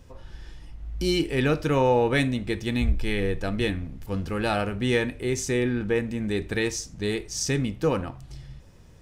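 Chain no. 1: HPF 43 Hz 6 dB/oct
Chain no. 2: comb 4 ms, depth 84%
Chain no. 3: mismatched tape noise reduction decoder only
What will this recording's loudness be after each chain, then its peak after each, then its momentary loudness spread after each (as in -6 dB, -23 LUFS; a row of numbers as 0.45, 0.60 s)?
-26.0, -23.5, -26.0 LUFS; -10.0, -8.0, -9.5 dBFS; 11, 12, 11 LU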